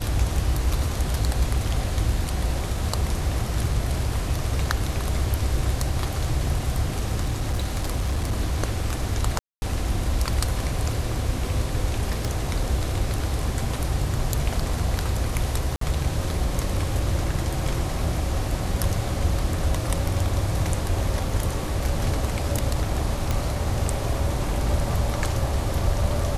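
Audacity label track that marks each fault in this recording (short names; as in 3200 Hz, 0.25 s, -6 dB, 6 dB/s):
7.220000	8.330000	clipped -19.5 dBFS
9.390000	9.620000	gap 0.23 s
12.250000	12.250000	pop
15.760000	15.810000	gap 53 ms
23.310000	23.310000	pop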